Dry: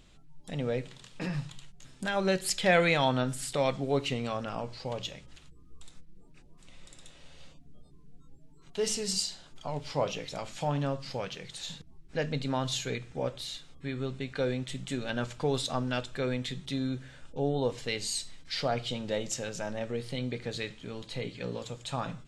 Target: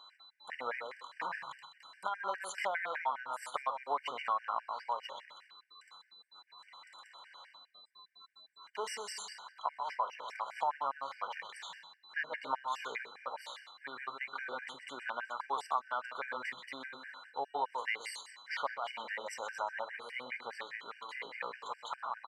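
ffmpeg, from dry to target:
ffmpeg -i in.wav -filter_complex "[0:a]highpass=frequency=1000:width_type=q:width=4.9,highshelf=frequency=3000:width_type=q:width=1.5:gain=-11,bandreject=frequency=2600:width=8.2,asplit=2[link_01][link_02];[link_02]adelay=128,lowpass=frequency=4900:poles=1,volume=-8dB,asplit=2[link_03][link_04];[link_04]adelay=128,lowpass=frequency=4900:poles=1,volume=0.21,asplit=2[link_05][link_06];[link_06]adelay=128,lowpass=frequency=4900:poles=1,volume=0.21[link_07];[link_03][link_05][link_07]amix=inputs=3:normalize=0[link_08];[link_01][link_08]amix=inputs=2:normalize=0,aeval=exprs='val(0)+0.00141*sin(2*PI*4000*n/s)':channel_layout=same,acompressor=threshold=-33dB:ratio=4,afftfilt=real='re*gt(sin(2*PI*4.9*pts/sr)*(1-2*mod(floor(b*sr/1024/1500),2)),0)':imag='im*gt(sin(2*PI*4.9*pts/sr)*(1-2*mod(floor(b*sr/1024/1500),2)),0)':win_size=1024:overlap=0.75,volume=2.5dB" out.wav

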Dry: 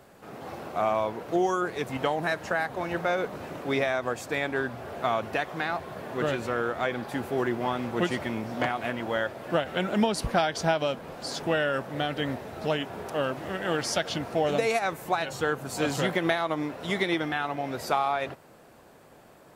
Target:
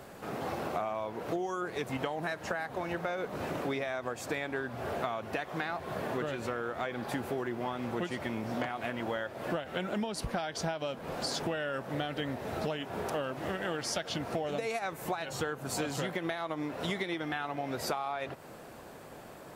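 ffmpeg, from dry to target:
ffmpeg -i in.wav -af "acompressor=threshold=-36dB:ratio=10,volume=5dB" out.wav

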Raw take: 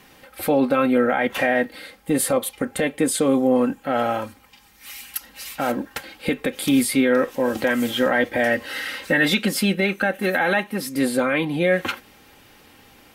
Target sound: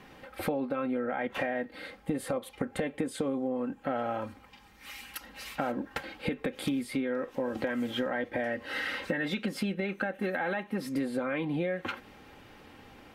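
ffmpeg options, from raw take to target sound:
ffmpeg -i in.wav -af "lowpass=frequency=1900:poles=1,acompressor=threshold=-28dB:ratio=12" out.wav

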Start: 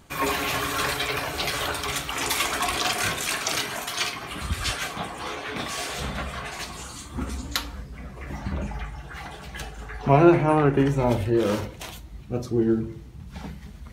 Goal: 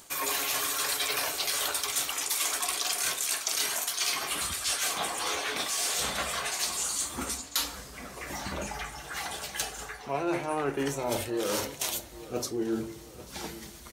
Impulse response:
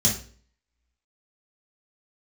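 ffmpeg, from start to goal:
-filter_complex "[0:a]bass=frequency=250:gain=-14,treble=frequency=4000:gain=13,areverse,acompressor=threshold=-28dB:ratio=10,areverse,asplit=2[link_01][link_02];[link_02]adelay=838,lowpass=frequency=2700:poles=1,volume=-16dB,asplit=2[link_03][link_04];[link_04]adelay=838,lowpass=frequency=2700:poles=1,volume=0.47,asplit=2[link_05][link_06];[link_06]adelay=838,lowpass=frequency=2700:poles=1,volume=0.47,asplit=2[link_07][link_08];[link_08]adelay=838,lowpass=frequency=2700:poles=1,volume=0.47[link_09];[link_01][link_03][link_05][link_07][link_09]amix=inputs=5:normalize=0,volume=1.5dB"

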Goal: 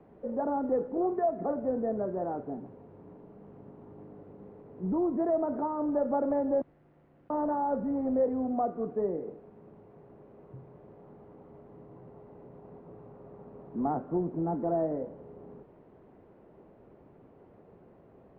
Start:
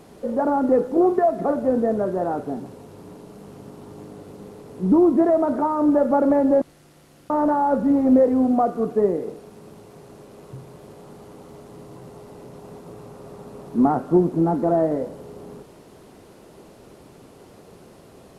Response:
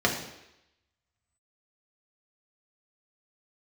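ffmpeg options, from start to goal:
-filter_complex "[0:a]aemphasis=mode=production:type=75kf,acrossover=split=160|410|1100[link_01][link_02][link_03][link_04];[link_02]alimiter=limit=-22.5dB:level=0:latency=1[link_05];[link_04]lowpass=frequency=1700:width=0.5412,lowpass=frequency=1700:width=1.3066[link_06];[link_01][link_05][link_03][link_06]amix=inputs=4:normalize=0,volume=-9dB"

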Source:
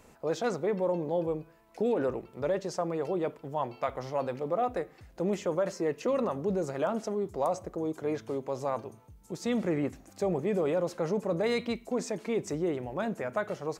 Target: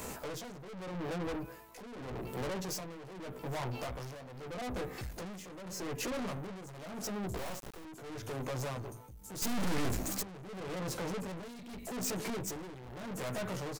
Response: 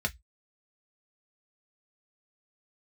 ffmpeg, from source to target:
-filter_complex "[0:a]acrossover=split=220[link_01][link_02];[link_02]acompressor=threshold=-39dB:ratio=12[link_03];[link_01][link_03]amix=inputs=2:normalize=0,asplit=2[link_04][link_05];[link_05]adelay=16,volume=-3dB[link_06];[link_04][link_06]amix=inputs=2:normalize=0,aeval=exprs='(tanh(316*val(0)+0.35)-tanh(0.35))/316':channel_layout=same,highshelf=frequency=7700:gain=11.5,asettb=1/sr,asplit=3[link_07][link_08][link_09];[link_07]atrim=end=7.374[link_10];[link_08]atrim=start=7.37:end=7.85,asetpts=PTS-STARTPTS,afade=type=in:duration=0.004:curve=qsin,afade=type=out:start_time=0.476:duration=0.004:curve=qsin,acrusher=bits=6:dc=4:mix=0:aa=0.000001[link_11];[link_09]atrim=start=7.846[link_12];[link_10][link_11]acrossfade=duration=0.004:curve1=hsin:curve2=qsin[link_13];[link_13][link_12]acrossfade=duration=0.004:curve1=qsin:curve2=hsin,tremolo=f=0.82:d=0.75,asettb=1/sr,asplit=3[link_14][link_15][link_16];[link_14]atrim=end=9.424[link_17];[link_15]atrim=start=9.42:end=10.23,asetpts=PTS-STARTPTS,afade=type=in:duration=0.004:curve=qsin,afade=type=out:start_time=0.806:duration=0.004:curve=qsin,aeval=exprs='0.0075*(cos(1*acos(clip(val(0)/0.0075,-1,1)))-cos(1*PI/2))+0.00335*(cos(5*acos(clip(val(0)/0.0075,-1,1)))-cos(5*PI/2))+0.00335*(cos(6*acos(clip(val(0)/0.0075,-1,1)))-cos(6*PI/2))':channel_layout=same[link_18];[link_16]atrim=start=10.226[link_19];[link_17][link_18]acrossfade=duration=0.004:curve1=hsin:curve2=qsin[link_20];[link_20][link_19]acrossfade=duration=0.004:curve1=qsin:curve2=hsin,volume=14.5dB"

